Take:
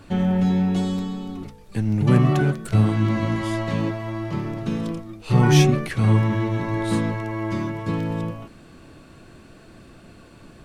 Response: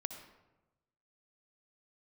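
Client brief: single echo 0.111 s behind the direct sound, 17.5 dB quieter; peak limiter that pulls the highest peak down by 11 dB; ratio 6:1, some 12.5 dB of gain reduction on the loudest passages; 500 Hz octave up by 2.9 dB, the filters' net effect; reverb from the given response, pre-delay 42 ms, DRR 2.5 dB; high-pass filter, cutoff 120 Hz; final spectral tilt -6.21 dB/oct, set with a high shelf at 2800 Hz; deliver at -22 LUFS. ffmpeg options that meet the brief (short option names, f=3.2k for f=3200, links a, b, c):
-filter_complex "[0:a]highpass=120,equalizer=f=500:t=o:g=4.5,highshelf=f=2.8k:g=-3.5,acompressor=threshold=-25dB:ratio=6,alimiter=level_in=2.5dB:limit=-24dB:level=0:latency=1,volume=-2.5dB,aecho=1:1:111:0.133,asplit=2[a][b];[1:a]atrim=start_sample=2205,adelay=42[c];[b][c]afir=irnorm=-1:irlink=0,volume=-1.5dB[d];[a][d]amix=inputs=2:normalize=0,volume=10.5dB"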